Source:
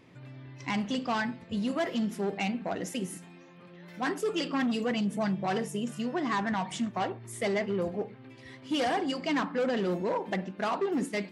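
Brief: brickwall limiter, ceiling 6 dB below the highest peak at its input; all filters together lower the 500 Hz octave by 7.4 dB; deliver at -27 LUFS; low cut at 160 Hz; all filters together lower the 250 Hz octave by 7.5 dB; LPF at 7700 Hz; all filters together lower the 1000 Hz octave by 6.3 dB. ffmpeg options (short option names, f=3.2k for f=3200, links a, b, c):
-af "highpass=160,lowpass=7.7k,equalizer=f=250:t=o:g=-6.5,equalizer=f=500:t=o:g=-6,equalizer=f=1k:t=o:g=-5.5,volume=12.5dB,alimiter=limit=-16.5dB:level=0:latency=1"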